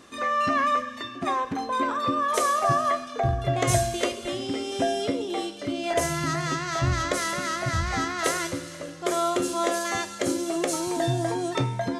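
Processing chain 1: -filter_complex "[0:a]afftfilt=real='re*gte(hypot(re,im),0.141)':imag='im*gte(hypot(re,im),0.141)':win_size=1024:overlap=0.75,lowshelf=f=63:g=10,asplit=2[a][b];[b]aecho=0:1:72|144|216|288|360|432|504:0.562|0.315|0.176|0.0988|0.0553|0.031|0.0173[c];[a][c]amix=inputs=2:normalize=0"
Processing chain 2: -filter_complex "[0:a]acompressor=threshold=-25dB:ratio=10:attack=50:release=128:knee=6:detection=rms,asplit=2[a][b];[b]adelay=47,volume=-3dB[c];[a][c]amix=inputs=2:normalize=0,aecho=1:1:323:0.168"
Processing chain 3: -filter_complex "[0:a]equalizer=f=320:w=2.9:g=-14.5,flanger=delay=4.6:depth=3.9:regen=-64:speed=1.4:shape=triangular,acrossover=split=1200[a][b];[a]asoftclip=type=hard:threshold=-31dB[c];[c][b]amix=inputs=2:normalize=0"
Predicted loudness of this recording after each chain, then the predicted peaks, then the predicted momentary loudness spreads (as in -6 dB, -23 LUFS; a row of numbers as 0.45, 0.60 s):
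-25.5, -26.5, -32.5 LUFS; -8.0, -10.0, -17.0 dBFS; 9, 4, 9 LU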